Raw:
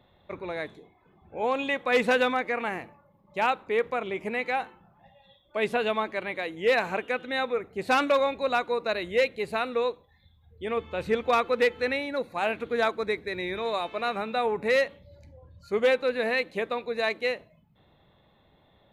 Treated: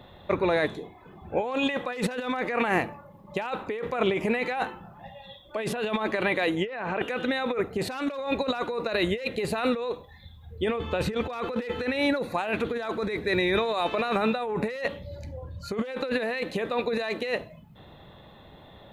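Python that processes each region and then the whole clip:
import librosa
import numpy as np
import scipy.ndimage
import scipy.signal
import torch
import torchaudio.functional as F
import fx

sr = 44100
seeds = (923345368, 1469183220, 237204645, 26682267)

y = fx.chain(x, sr, fx.env_lowpass_down(base_hz=2300.0, full_db=-22.5),
    fx.sustainer(db_per_s=33.0), at=(6.51, 7.02))
y = fx.over_compress(y, sr, threshold_db=-34.0, ratio=-1.0)
y = fx.notch(y, sr, hz=2200.0, q=15.0)
y = y * 10.0 ** (6.0 / 20.0)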